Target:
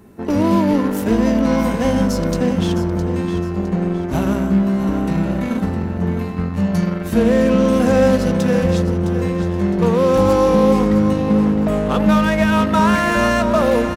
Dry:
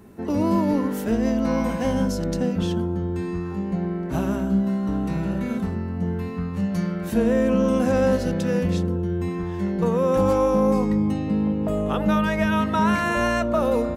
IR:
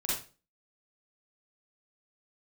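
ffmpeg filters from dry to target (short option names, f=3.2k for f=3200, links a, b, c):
-filter_complex "[0:a]asplit=2[a][b];[b]acrusher=bits=3:mix=0:aa=0.5,volume=-6dB[c];[a][c]amix=inputs=2:normalize=0,aecho=1:1:661|1322|1983|2644:0.299|0.116|0.0454|0.0177,volume=2dB"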